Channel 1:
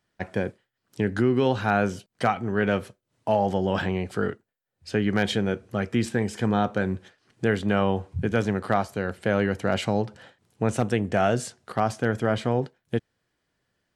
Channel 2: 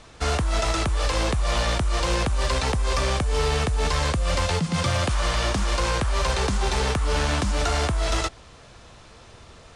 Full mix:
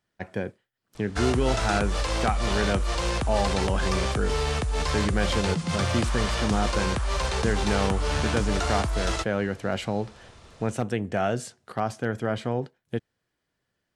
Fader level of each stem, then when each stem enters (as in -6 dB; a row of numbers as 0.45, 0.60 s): -3.5, -3.5 dB; 0.00, 0.95 s